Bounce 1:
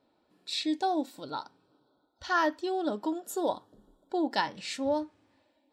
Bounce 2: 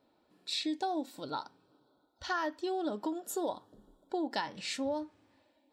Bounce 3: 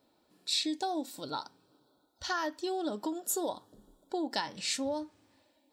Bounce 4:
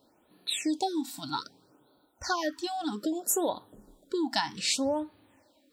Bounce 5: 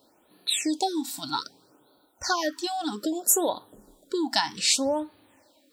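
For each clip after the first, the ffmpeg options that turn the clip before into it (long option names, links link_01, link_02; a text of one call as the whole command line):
ffmpeg -i in.wav -af "acompressor=threshold=-31dB:ratio=4" out.wav
ffmpeg -i in.wav -af "bass=frequency=250:gain=1,treble=frequency=4000:gain=9" out.wav
ffmpeg -i in.wav -af "afftfilt=real='re*(1-between(b*sr/1024,430*pow(6700/430,0.5+0.5*sin(2*PI*0.63*pts/sr))/1.41,430*pow(6700/430,0.5+0.5*sin(2*PI*0.63*pts/sr))*1.41))':imag='im*(1-between(b*sr/1024,430*pow(6700/430,0.5+0.5*sin(2*PI*0.63*pts/sr))/1.41,430*pow(6700/430,0.5+0.5*sin(2*PI*0.63*pts/sr))*1.41))':win_size=1024:overlap=0.75,volume=5dB" out.wav
ffmpeg -i in.wav -af "bass=frequency=250:gain=-5,treble=frequency=4000:gain=4,volume=3.5dB" out.wav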